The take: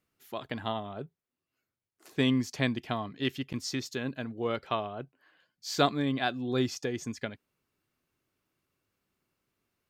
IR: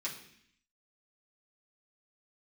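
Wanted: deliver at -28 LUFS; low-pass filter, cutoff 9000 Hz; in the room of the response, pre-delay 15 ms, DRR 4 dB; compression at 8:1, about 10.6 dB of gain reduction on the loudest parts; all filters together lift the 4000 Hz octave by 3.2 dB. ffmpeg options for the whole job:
-filter_complex "[0:a]lowpass=9k,equalizer=f=4k:t=o:g=4,acompressor=threshold=-30dB:ratio=8,asplit=2[a][b];[1:a]atrim=start_sample=2205,adelay=15[c];[b][c]afir=irnorm=-1:irlink=0,volume=-5.5dB[d];[a][d]amix=inputs=2:normalize=0,volume=7.5dB"

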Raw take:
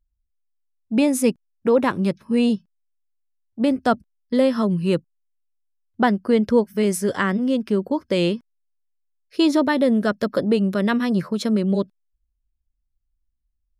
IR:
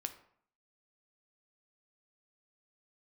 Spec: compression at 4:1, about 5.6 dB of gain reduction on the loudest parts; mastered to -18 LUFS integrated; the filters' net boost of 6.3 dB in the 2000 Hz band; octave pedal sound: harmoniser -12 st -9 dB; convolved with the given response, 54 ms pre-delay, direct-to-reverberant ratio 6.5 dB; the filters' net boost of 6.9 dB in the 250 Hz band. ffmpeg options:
-filter_complex "[0:a]equalizer=f=250:t=o:g=8,equalizer=f=2k:t=o:g=8,acompressor=threshold=-14dB:ratio=4,asplit=2[a][b];[1:a]atrim=start_sample=2205,adelay=54[c];[b][c]afir=irnorm=-1:irlink=0,volume=-5dB[d];[a][d]amix=inputs=2:normalize=0,asplit=2[e][f];[f]asetrate=22050,aresample=44100,atempo=2,volume=-9dB[g];[e][g]amix=inputs=2:normalize=0"

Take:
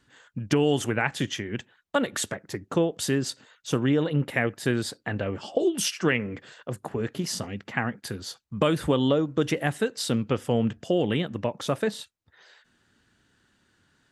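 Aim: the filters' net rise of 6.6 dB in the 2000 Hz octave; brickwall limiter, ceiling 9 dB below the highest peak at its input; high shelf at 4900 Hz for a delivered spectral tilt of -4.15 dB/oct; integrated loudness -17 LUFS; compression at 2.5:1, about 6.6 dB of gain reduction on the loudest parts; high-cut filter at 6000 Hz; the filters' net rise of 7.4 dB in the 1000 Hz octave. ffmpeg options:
-af "lowpass=6k,equalizer=f=1k:t=o:g=8.5,equalizer=f=2k:t=o:g=6,highshelf=f=4.9k:g=-5,acompressor=threshold=-24dB:ratio=2.5,volume=14dB,alimiter=limit=-2dB:level=0:latency=1"

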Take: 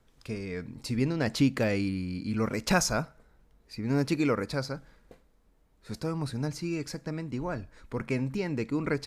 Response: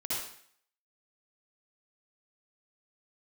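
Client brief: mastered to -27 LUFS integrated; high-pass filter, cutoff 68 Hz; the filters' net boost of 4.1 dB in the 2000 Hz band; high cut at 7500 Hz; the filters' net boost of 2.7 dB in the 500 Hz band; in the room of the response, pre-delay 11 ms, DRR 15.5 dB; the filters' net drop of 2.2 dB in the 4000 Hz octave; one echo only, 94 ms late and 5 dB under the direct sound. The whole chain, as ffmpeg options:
-filter_complex "[0:a]highpass=68,lowpass=7.5k,equalizer=f=500:t=o:g=3,equalizer=f=2k:t=o:g=6,equalizer=f=4k:t=o:g=-3.5,aecho=1:1:94:0.562,asplit=2[a][b];[1:a]atrim=start_sample=2205,adelay=11[c];[b][c]afir=irnorm=-1:irlink=0,volume=-20dB[d];[a][d]amix=inputs=2:normalize=0,volume=1.5dB"

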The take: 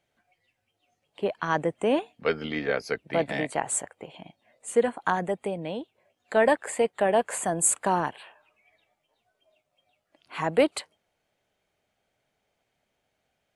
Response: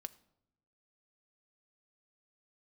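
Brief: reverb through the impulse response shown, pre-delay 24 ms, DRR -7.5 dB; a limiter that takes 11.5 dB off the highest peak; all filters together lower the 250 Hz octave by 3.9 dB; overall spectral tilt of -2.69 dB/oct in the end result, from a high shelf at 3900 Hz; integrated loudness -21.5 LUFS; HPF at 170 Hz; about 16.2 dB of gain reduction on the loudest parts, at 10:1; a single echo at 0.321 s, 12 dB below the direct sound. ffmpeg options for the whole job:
-filter_complex "[0:a]highpass=170,equalizer=f=250:t=o:g=-4,highshelf=f=3.9k:g=5,acompressor=threshold=-33dB:ratio=10,alimiter=level_in=5dB:limit=-24dB:level=0:latency=1,volume=-5dB,aecho=1:1:321:0.251,asplit=2[a][b];[1:a]atrim=start_sample=2205,adelay=24[c];[b][c]afir=irnorm=-1:irlink=0,volume=11.5dB[d];[a][d]amix=inputs=2:normalize=0,volume=11dB"

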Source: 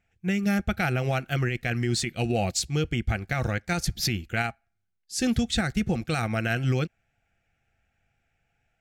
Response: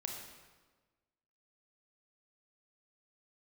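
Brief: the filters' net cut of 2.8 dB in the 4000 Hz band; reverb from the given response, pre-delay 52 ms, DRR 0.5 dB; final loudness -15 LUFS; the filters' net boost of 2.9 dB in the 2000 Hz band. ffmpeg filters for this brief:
-filter_complex "[0:a]equalizer=f=2k:t=o:g=5,equalizer=f=4k:t=o:g=-5,asplit=2[a][b];[1:a]atrim=start_sample=2205,adelay=52[c];[b][c]afir=irnorm=-1:irlink=0,volume=0dB[d];[a][d]amix=inputs=2:normalize=0,volume=9dB"

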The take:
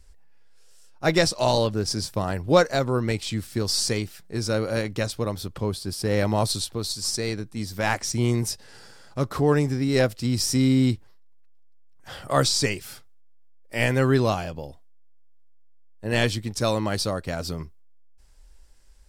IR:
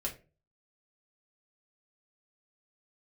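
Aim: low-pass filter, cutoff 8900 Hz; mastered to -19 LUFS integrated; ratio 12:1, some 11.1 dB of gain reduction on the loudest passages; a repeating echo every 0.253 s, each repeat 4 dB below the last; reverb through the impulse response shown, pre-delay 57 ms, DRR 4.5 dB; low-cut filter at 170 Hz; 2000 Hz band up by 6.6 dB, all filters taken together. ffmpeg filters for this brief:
-filter_complex "[0:a]highpass=170,lowpass=8.9k,equalizer=f=2k:t=o:g=8,acompressor=threshold=-23dB:ratio=12,aecho=1:1:253|506|759|1012|1265|1518|1771|2024|2277:0.631|0.398|0.25|0.158|0.0994|0.0626|0.0394|0.0249|0.0157,asplit=2[a][b];[1:a]atrim=start_sample=2205,adelay=57[c];[b][c]afir=irnorm=-1:irlink=0,volume=-6.5dB[d];[a][d]amix=inputs=2:normalize=0,volume=7.5dB"

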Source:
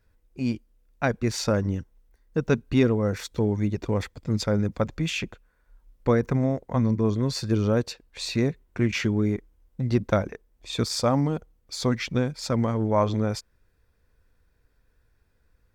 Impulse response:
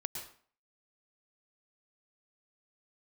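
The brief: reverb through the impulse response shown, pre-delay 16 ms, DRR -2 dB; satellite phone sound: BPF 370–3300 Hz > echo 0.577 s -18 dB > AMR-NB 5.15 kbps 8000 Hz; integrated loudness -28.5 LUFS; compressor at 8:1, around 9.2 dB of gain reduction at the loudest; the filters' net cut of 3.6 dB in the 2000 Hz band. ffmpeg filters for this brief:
-filter_complex "[0:a]equalizer=f=2k:t=o:g=-4,acompressor=threshold=-26dB:ratio=8,asplit=2[a][b];[1:a]atrim=start_sample=2205,adelay=16[c];[b][c]afir=irnorm=-1:irlink=0,volume=1.5dB[d];[a][d]amix=inputs=2:normalize=0,highpass=370,lowpass=3.3k,aecho=1:1:577:0.126,volume=7.5dB" -ar 8000 -c:a libopencore_amrnb -b:a 5150

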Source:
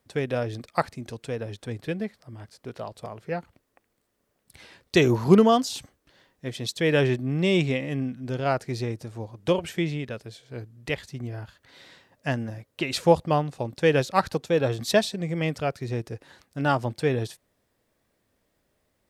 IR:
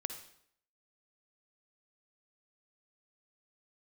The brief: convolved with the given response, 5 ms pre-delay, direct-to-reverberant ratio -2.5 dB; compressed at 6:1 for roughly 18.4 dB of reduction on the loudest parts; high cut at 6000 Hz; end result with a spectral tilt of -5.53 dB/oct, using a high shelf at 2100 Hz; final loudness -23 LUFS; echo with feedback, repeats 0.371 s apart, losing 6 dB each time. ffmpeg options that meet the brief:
-filter_complex "[0:a]lowpass=6k,highshelf=f=2.1k:g=-5.5,acompressor=threshold=-32dB:ratio=6,aecho=1:1:371|742|1113|1484|1855|2226:0.501|0.251|0.125|0.0626|0.0313|0.0157,asplit=2[a][b];[1:a]atrim=start_sample=2205,adelay=5[c];[b][c]afir=irnorm=-1:irlink=0,volume=2.5dB[d];[a][d]amix=inputs=2:normalize=0,volume=10dB"

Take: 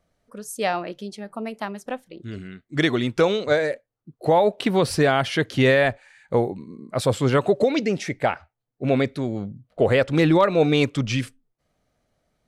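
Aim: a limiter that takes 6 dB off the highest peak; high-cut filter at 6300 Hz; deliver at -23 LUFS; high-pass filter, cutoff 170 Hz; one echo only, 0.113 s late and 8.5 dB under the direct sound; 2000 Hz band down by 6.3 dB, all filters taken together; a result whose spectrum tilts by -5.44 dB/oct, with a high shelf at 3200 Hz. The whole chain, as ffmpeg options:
-af "highpass=170,lowpass=6.3k,equalizer=f=2k:t=o:g=-5.5,highshelf=f=3.2k:g=-7,alimiter=limit=-13.5dB:level=0:latency=1,aecho=1:1:113:0.376,volume=2.5dB"

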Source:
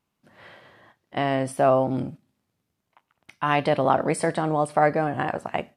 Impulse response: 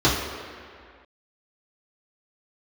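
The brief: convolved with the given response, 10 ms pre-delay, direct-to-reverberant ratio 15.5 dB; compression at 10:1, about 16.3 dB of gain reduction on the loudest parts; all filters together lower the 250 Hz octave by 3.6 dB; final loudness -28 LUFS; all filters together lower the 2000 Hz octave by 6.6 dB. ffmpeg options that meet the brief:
-filter_complex "[0:a]equalizer=f=250:t=o:g=-4.5,equalizer=f=2k:t=o:g=-8.5,acompressor=threshold=-33dB:ratio=10,asplit=2[a][b];[1:a]atrim=start_sample=2205,adelay=10[c];[b][c]afir=irnorm=-1:irlink=0,volume=-35dB[d];[a][d]amix=inputs=2:normalize=0,volume=10dB"

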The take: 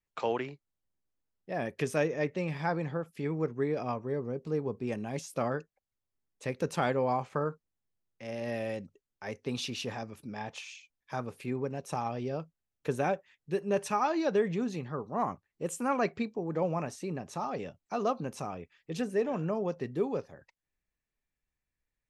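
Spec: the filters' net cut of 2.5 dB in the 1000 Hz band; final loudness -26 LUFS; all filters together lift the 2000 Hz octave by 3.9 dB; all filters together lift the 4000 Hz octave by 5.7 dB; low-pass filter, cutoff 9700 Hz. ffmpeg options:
-af "lowpass=9.7k,equalizer=f=1k:t=o:g=-5,equalizer=f=2k:t=o:g=5,equalizer=f=4k:t=o:g=6,volume=8dB"

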